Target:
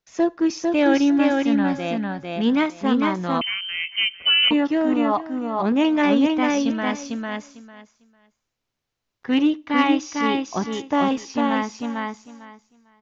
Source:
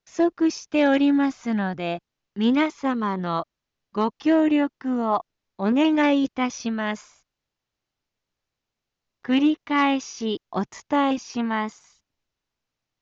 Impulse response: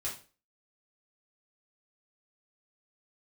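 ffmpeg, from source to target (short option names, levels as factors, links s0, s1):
-filter_complex "[0:a]aecho=1:1:450|900|1350:0.708|0.127|0.0229,asplit=2[s0][s1];[1:a]atrim=start_sample=2205,asetrate=34839,aresample=44100[s2];[s1][s2]afir=irnorm=-1:irlink=0,volume=0.0708[s3];[s0][s3]amix=inputs=2:normalize=0,asettb=1/sr,asplit=3[s4][s5][s6];[s4]atrim=end=3.414[s7];[s5]atrim=start=3.41:end=4.51,asetpts=PTS-STARTPTS,afade=t=in:d=0.004:c=qsin,afade=t=out:st=1.096:d=0.004:c=qsin,lowpass=f=2800:t=q:w=0.5098,lowpass=f=2800:t=q:w=0.6013,lowpass=f=2800:t=q:w=0.9,lowpass=f=2800:t=q:w=2.563,afreqshift=-3300[s8];[s6]atrim=start=4.506[s9];[s7][s8]acrossfade=d=0.004:c1=hsin:c2=qsin[s10];[s10][s9]acrossfade=d=0.004:c1=qsin:c2=hsin"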